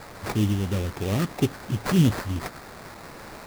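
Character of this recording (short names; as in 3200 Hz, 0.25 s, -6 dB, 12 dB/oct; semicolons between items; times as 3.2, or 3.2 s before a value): a quantiser's noise floor 6-bit, dither triangular; phasing stages 6, 3 Hz, lowest notch 690–3600 Hz; aliases and images of a low sample rate 3100 Hz, jitter 20%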